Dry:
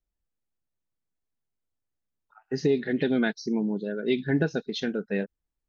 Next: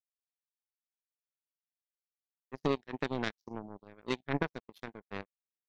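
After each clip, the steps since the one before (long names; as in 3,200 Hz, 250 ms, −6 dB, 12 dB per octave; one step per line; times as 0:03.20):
power curve on the samples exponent 3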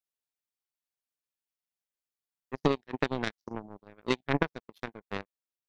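transient designer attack +7 dB, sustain −3 dB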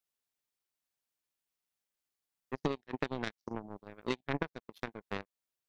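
downward compressor 2 to 1, threshold −40 dBFS, peak gain reduction 12 dB
level +3 dB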